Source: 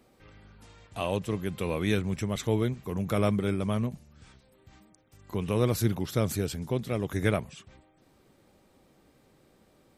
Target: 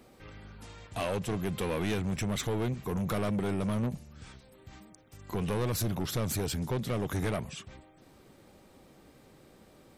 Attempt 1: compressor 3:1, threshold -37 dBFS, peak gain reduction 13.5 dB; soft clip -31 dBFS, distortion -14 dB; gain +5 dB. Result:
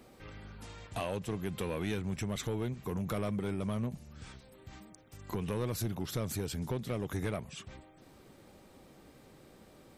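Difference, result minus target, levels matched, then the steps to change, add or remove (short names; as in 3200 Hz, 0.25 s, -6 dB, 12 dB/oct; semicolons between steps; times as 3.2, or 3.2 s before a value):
compressor: peak gain reduction +7.5 dB
change: compressor 3:1, threshold -26 dBFS, peak gain reduction 6 dB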